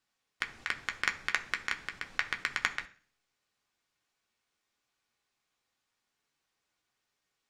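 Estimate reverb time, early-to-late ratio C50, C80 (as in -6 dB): 0.45 s, 15.5 dB, 20.0 dB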